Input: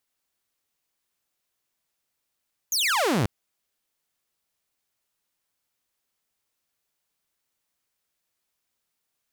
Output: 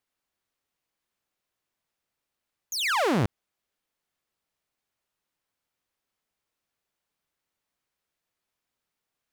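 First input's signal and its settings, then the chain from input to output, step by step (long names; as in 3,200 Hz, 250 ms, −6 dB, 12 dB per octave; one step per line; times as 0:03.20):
single falling chirp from 6,900 Hz, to 91 Hz, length 0.54 s saw, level −18 dB
one scale factor per block 7 bits
high-shelf EQ 4,100 Hz −9 dB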